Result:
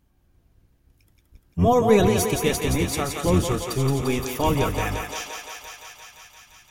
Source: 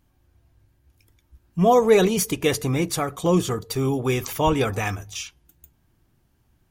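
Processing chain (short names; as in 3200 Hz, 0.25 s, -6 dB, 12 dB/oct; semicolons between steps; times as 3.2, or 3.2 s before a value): octaver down 1 oct, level 0 dB; on a send: thinning echo 0.173 s, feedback 80%, high-pass 390 Hz, level -5 dB; on the sum: gain -2.5 dB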